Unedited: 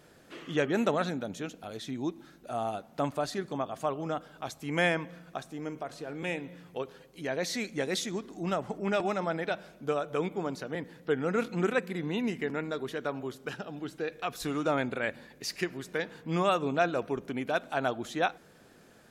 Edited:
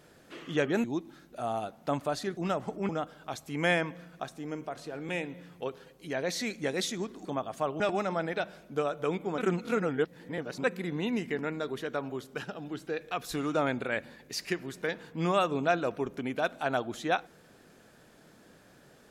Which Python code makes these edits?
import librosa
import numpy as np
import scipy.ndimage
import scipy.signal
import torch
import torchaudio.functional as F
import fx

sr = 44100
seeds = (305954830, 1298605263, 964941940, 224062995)

y = fx.edit(x, sr, fx.cut(start_s=0.84, length_s=1.11),
    fx.swap(start_s=3.48, length_s=0.55, other_s=8.39, other_length_s=0.52),
    fx.reverse_span(start_s=10.49, length_s=1.26), tone=tone)